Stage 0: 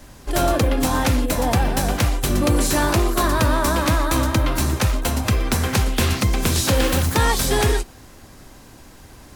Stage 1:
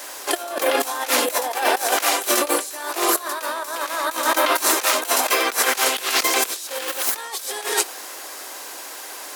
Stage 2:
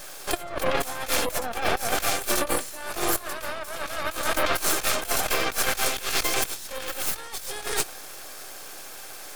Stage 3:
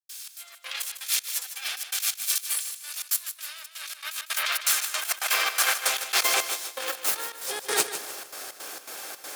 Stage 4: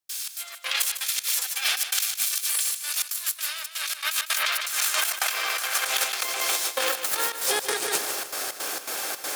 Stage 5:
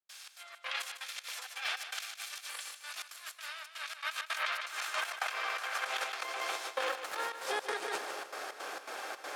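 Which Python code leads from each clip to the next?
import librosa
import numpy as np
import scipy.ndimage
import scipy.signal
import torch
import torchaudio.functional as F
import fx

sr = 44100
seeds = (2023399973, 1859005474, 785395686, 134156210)

y1 = scipy.signal.sosfilt(scipy.signal.bessel(8, 620.0, 'highpass', norm='mag', fs=sr, output='sos'), x)
y1 = fx.high_shelf(y1, sr, hz=8300.0, db=6.5)
y1 = fx.over_compress(y1, sr, threshold_db=-29.0, ratio=-0.5)
y1 = y1 * 10.0 ** (7.5 / 20.0)
y2 = fx.notch_comb(y1, sr, f0_hz=980.0)
y2 = fx.spec_gate(y2, sr, threshold_db=-25, keep='strong')
y2 = np.maximum(y2, 0.0)
y3 = fx.step_gate(y2, sr, bpm=164, pattern='.xx.xx.xxx', floor_db=-60.0, edge_ms=4.5)
y3 = fx.filter_sweep_highpass(y3, sr, from_hz=3300.0, to_hz=270.0, start_s=3.65, end_s=7.65, q=0.73)
y3 = fx.echo_feedback(y3, sr, ms=152, feedback_pct=34, wet_db=-10.5)
y3 = y3 * 10.0 ** (3.0 / 20.0)
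y4 = fx.over_compress(y3, sr, threshold_db=-30.0, ratio=-1.0)
y4 = y4 * 10.0 ** (5.0 / 20.0)
y5 = fx.bandpass_q(y4, sr, hz=910.0, q=0.58)
y5 = y5 + 10.0 ** (-19.5 / 20.0) * np.pad(y5, (int(645 * sr / 1000.0), 0))[:len(y5)]
y5 = y5 * 10.0 ** (-5.0 / 20.0)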